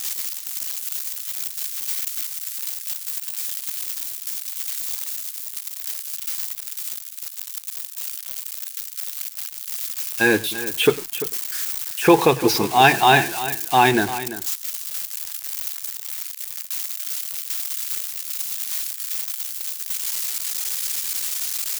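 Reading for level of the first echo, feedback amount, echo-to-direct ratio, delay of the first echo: −20.0 dB, repeats not evenly spaced, −12.5 dB, 101 ms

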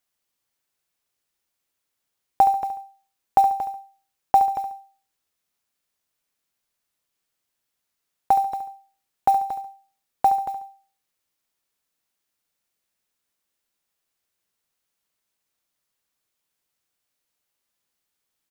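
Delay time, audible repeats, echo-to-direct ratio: 70 ms, 2, −10.5 dB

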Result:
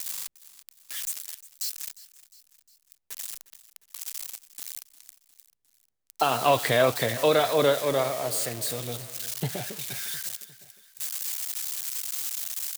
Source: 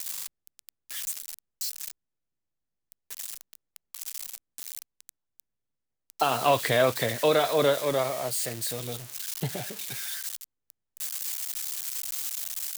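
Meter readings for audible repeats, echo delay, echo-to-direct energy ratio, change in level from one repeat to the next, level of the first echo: 3, 355 ms, −16.5 dB, −5.5 dB, −18.0 dB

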